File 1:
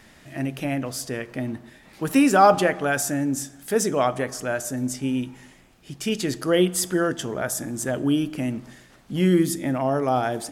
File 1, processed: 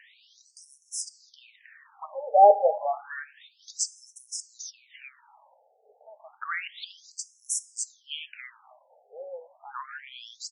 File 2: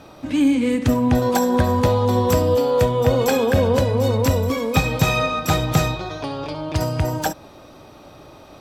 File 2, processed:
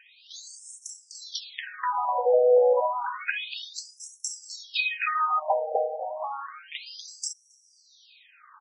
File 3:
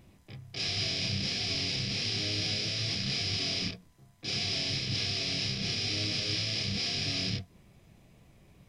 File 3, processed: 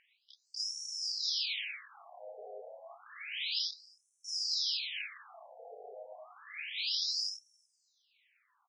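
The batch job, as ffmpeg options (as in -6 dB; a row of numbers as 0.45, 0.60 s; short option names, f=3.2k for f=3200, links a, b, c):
-filter_complex "[0:a]asplit=2[a][b];[b]adelay=270,highpass=300,lowpass=3.4k,asoftclip=type=hard:threshold=-13dB,volume=-16dB[c];[a][c]amix=inputs=2:normalize=0,afftfilt=real='re*between(b*sr/1024,590*pow(7600/590,0.5+0.5*sin(2*PI*0.3*pts/sr))/1.41,590*pow(7600/590,0.5+0.5*sin(2*PI*0.3*pts/sr))*1.41)':imag='im*between(b*sr/1024,590*pow(7600/590,0.5+0.5*sin(2*PI*0.3*pts/sr))/1.41,590*pow(7600/590,0.5+0.5*sin(2*PI*0.3*pts/sr))*1.41)':win_size=1024:overlap=0.75,volume=1dB"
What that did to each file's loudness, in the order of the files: -3.5, -7.5, -4.0 LU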